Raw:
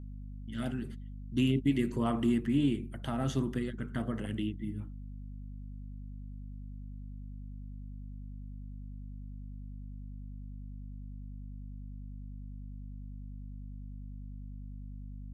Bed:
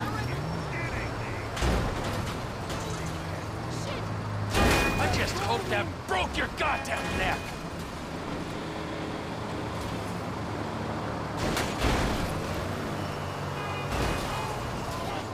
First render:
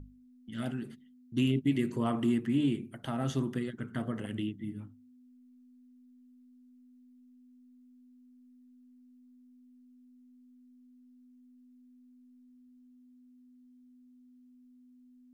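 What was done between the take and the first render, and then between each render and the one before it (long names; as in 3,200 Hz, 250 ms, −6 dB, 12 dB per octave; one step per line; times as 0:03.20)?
mains-hum notches 50/100/150/200 Hz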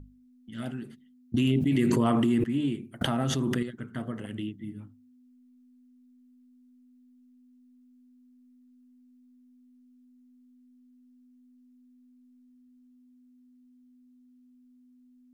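0:01.34–0:02.44: envelope flattener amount 100%
0:03.01–0:03.63: envelope flattener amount 100%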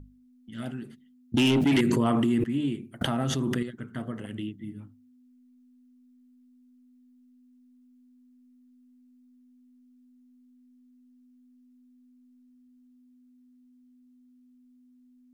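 0:01.37–0:01.81: mid-hump overdrive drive 21 dB, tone 7,200 Hz, clips at −13.5 dBFS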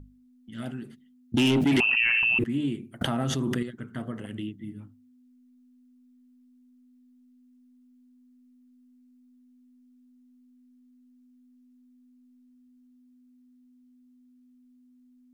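0:01.80–0:02.39: voice inversion scrambler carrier 2,900 Hz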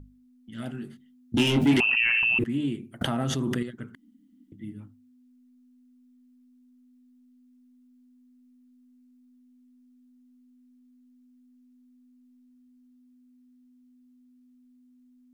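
0:00.72–0:01.74: double-tracking delay 21 ms −5 dB
0:03.95–0:04.52: fill with room tone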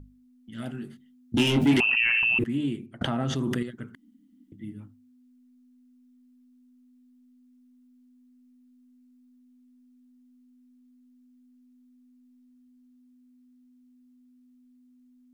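0:02.86–0:03.36: high-frequency loss of the air 74 metres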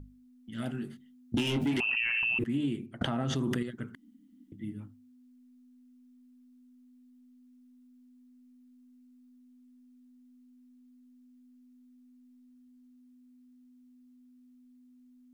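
downward compressor 12 to 1, threshold −26 dBFS, peak gain reduction 10.5 dB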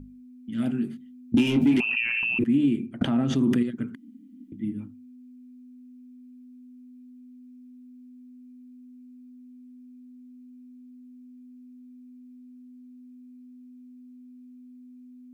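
hollow resonant body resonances 240/2,400 Hz, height 11 dB, ringing for 20 ms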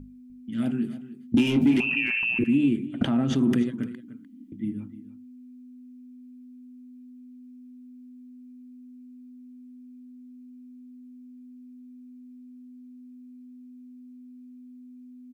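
single-tap delay 300 ms −15.5 dB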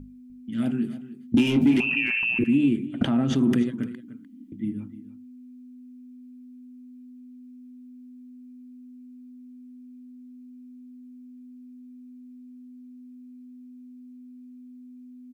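level +1 dB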